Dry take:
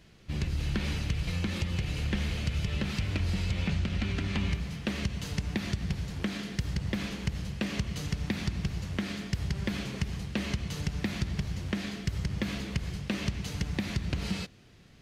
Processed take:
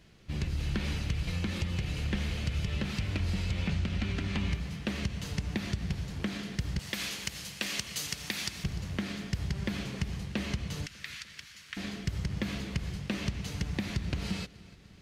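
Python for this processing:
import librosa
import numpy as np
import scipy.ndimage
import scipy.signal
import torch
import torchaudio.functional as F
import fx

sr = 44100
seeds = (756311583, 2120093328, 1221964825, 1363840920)

y = fx.tilt_eq(x, sr, slope=4.0, at=(6.79, 8.64))
y = fx.highpass(y, sr, hz=1400.0, slope=24, at=(10.86, 11.77))
y = fx.echo_feedback(y, sr, ms=298, feedback_pct=58, wet_db=-21.0)
y = y * librosa.db_to_amplitude(-1.5)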